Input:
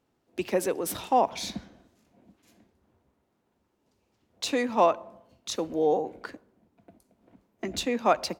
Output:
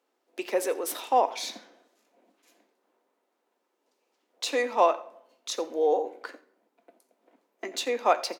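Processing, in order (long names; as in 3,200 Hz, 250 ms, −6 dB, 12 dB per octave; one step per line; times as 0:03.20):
high-pass filter 350 Hz 24 dB per octave
single-tap delay 86 ms −20 dB
on a send at −9 dB: convolution reverb RT60 0.55 s, pre-delay 3 ms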